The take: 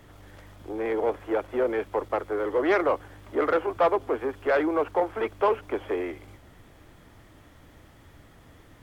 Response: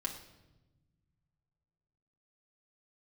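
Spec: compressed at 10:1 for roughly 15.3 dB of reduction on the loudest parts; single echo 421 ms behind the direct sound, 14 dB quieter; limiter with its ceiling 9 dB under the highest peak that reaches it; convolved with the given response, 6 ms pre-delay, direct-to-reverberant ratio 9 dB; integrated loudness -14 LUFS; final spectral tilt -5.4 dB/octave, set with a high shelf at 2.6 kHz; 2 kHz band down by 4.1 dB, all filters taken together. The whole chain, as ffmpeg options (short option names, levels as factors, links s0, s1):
-filter_complex "[0:a]equalizer=f=2000:t=o:g=-8,highshelf=f=2600:g=6,acompressor=threshold=0.0178:ratio=10,alimiter=level_in=2.82:limit=0.0631:level=0:latency=1,volume=0.355,aecho=1:1:421:0.2,asplit=2[s0][s1];[1:a]atrim=start_sample=2205,adelay=6[s2];[s1][s2]afir=irnorm=-1:irlink=0,volume=0.316[s3];[s0][s3]amix=inputs=2:normalize=0,volume=26.6"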